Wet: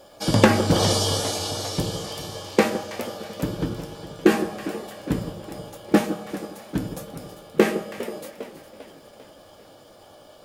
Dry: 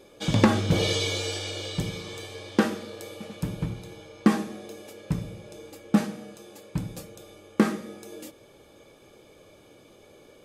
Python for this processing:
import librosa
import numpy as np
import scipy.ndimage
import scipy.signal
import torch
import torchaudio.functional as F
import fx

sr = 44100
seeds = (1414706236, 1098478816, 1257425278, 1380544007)

y = fx.echo_alternate(x, sr, ms=162, hz=880.0, feedback_pct=65, wet_db=-11)
y = fx.formant_shift(y, sr, semitones=6)
y = fx.echo_warbled(y, sr, ms=403, feedback_pct=52, rate_hz=2.8, cents=205, wet_db=-15)
y = y * 10.0 ** (3.5 / 20.0)